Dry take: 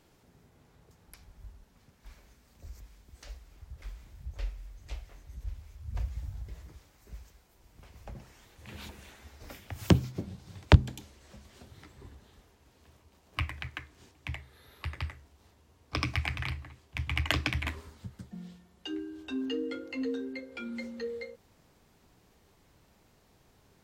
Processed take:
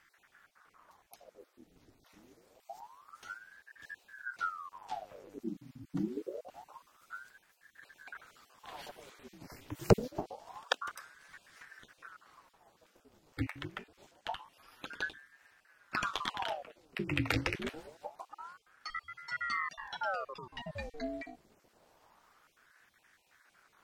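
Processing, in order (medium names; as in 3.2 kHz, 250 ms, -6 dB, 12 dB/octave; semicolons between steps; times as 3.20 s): random holes in the spectrogram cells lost 26%; 4.71–5.39 s: mains buzz 100 Hz, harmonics 27, -57 dBFS -6 dB/octave; wow and flutter 18 cents; ring modulator with a swept carrier 950 Hz, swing 80%, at 0.26 Hz; trim +1 dB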